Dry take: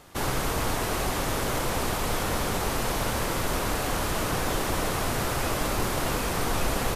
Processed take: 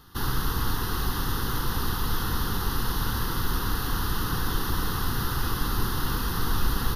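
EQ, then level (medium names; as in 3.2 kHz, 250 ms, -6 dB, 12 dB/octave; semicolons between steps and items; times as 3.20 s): bass shelf 100 Hz +5.5 dB; treble shelf 9.8 kHz +8.5 dB; static phaser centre 2.3 kHz, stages 6; 0.0 dB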